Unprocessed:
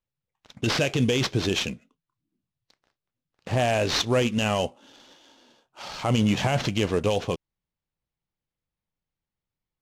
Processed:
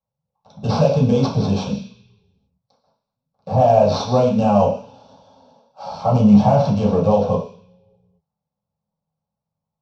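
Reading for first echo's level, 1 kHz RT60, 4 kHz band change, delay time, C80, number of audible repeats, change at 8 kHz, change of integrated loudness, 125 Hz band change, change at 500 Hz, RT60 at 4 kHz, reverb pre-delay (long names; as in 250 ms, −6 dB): no echo audible, 0.50 s, −6.0 dB, no echo audible, 10.0 dB, no echo audible, can't be measured, +8.0 dB, +8.5 dB, +9.5 dB, 0.85 s, 3 ms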